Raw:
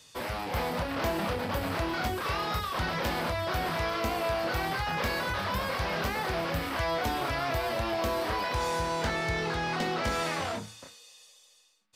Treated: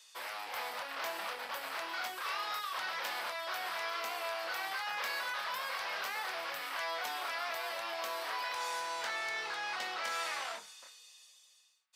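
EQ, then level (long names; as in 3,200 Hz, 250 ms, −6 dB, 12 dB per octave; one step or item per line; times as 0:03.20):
high-pass filter 950 Hz 12 dB per octave
−3.5 dB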